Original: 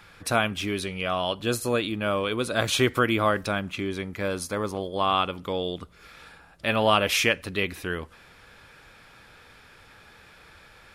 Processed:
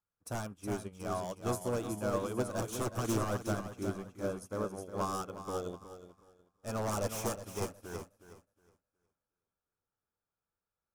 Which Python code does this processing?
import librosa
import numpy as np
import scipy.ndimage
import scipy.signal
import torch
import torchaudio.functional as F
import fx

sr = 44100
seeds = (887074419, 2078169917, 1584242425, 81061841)

y = 10.0 ** (-20.5 / 20.0) * (np.abs((x / 10.0 ** (-20.5 / 20.0) + 3.0) % 4.0 - 2.0) - 1.0)
y = fx.band_shelf(y, sr, hz=2800.0, db=-13.5, octaves=1.7)
y = fx.echo_feedback(y, sr, ms=365, feedback_pct=52, wet_db=-5.0)
y = fx.upward_expand(y, sr, threshold_db=-49.0, expansion=2.5)
y = F.gain(torch.from_numpy(y), -3.5).numpy()